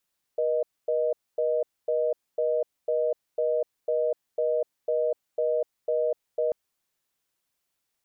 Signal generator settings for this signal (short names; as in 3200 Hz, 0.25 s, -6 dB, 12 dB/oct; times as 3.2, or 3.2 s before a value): call progress tone reorder tone, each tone -25 dBFS 6.14 s